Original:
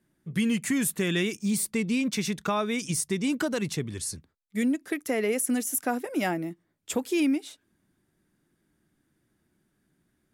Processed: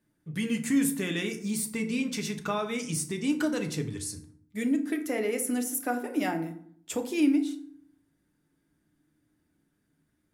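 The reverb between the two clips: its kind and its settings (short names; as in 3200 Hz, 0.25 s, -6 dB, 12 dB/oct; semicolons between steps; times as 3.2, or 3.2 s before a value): FDN reverb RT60 0.59 s, low-frequency decay 1.4×, high-frequency decay 0.6×, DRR 4.5 dB; gain -4 dB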